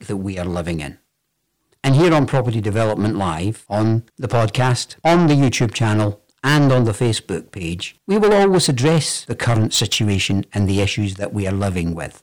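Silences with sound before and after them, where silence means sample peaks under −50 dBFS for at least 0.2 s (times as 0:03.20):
0:01.00–0:01.72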